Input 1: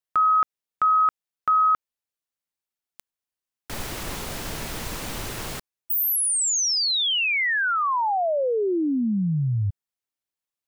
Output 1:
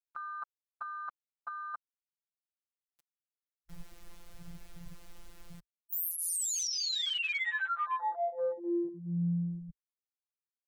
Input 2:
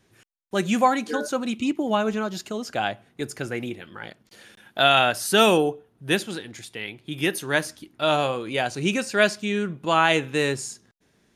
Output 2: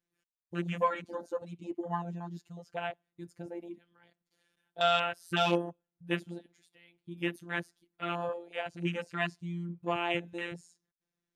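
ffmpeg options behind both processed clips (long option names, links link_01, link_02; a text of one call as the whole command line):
ffmpeg -i in.wav -af "afftfilt=real='hypot(re,im)*cos(PI*b)':imag='0':win_size=1024:overlap=0.75,afwtdn=0.0282,volume=-6.5dB" out.wav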